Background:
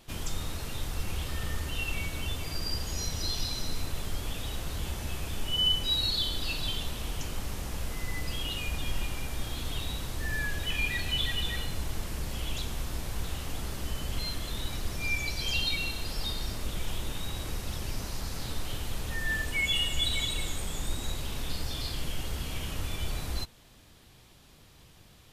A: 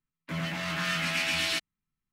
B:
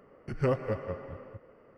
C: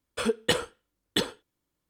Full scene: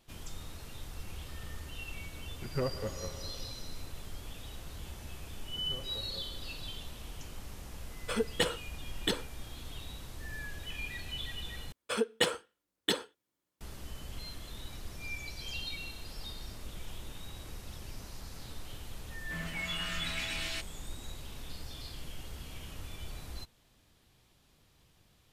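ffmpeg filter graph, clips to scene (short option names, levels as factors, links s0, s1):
-filter_complex "[2:a]asplit=2[s0][s1];[3:a]asplit=2[s2][s3];[0:a]volume=0.316[s4];[s1]alimiter=level_in=1.19:limit=0.0631:level=0:latency=1:release=71,volume=0.841[s5];[s3]highpass=f=230:p=1[s6];[s4]asplit=2[s7][s8];[s7]atrim=end=11.724[s9];[s6]atrim=end=1.89,asetpts=PTS-STARTPTS,volume=0.708[s10];[s8]atrim=start=13.606[s11];[s0]atrim=end=1.77,asetpts=PTS-STARTPTS,volume=0.501,afade=t=in:d=0.004:c=hsin,afade=t=out:st=1.766:d=0.004:c=hsin,adelay=2140[s12];[s5]atrim=end=1.77,asetpts=PTS-STARTPTS,volume=0.2,afade=t=in:d=0.004:c=hsin,afade=t=out:st=1.766:d=0.004:c=hsin,adelay=5270[s13];[s2]atrim=end=1.89,asetpts=PTS-STARTPTS,volume=0.562,afade=t=in:d=0.004:c=hsin,afade=t=out:st=1.886:d=0.004:c=hsin,adelay=7910[s14];[1:a]atrim=end=2.12,asetpts=PTS-STARTPTS,volume=0.335,afade=t=in:d=0.004:c=hsin,afade=t=out:st=2.116:d=0.004:c=hsin,adelay=19020[s15];[s9][s10]acrossfade=d=0.004:c1=hsin:c2=hsin[s16];[s16][s11]acrossfade=d=0.004:c1=hsin:c2=hsin[s17];[s17][s12][s13][s14][s15]amix=inputs=5:normalize=0"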